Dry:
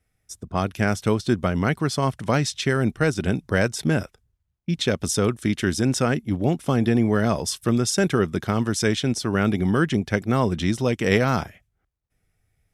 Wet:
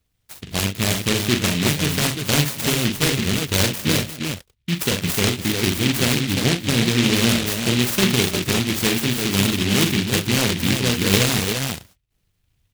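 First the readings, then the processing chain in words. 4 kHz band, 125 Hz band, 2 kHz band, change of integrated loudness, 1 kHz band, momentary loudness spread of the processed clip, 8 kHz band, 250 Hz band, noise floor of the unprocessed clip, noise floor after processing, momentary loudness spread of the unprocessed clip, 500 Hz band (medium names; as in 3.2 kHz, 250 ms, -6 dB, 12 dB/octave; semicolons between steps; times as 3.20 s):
+11.5 dB, +2.0 dB, +4.5 dB, +3.5 dB, -1.5 dB, 6 LU, +8.0 dB, +1.5 dB, -74 dBFS, -70 dBFS, 5 LU, -1.5 dB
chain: on a send: multi-tap echo 41/62/204/331/353 ms -6/-11.5/-18/-13.5/-5 dB; on the sum: delay time shaken by noise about 2.8 kHz, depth 0.33 ms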